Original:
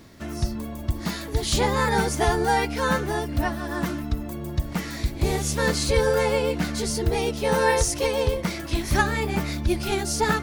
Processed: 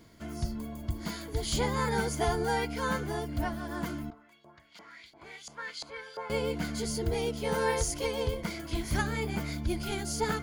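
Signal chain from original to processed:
EQ curve with evenly spaced ripples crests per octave 1.8, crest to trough 7 dB
0:04.10–0:06.30: auto-filter band-pass saw up 2.9 Hz 750–4,600 Hz
level −8.5 dB

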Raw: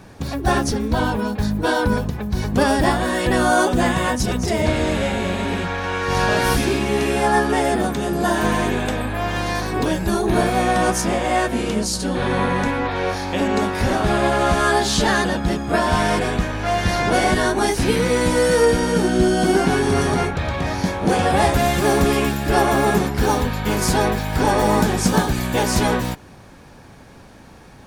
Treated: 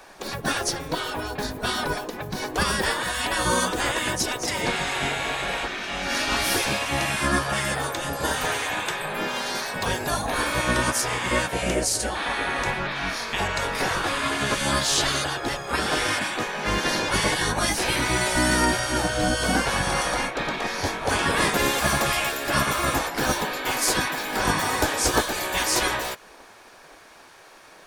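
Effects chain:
0:11.62–0:12.10: octave-band graphic EQ 125/250/500/1,000/2,000/4,000/8,000 Hz −5/+6/+10/−7/+5/−6/+4 dB
gate on every frequency bin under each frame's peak −10 dB weak
level +1.5 dB

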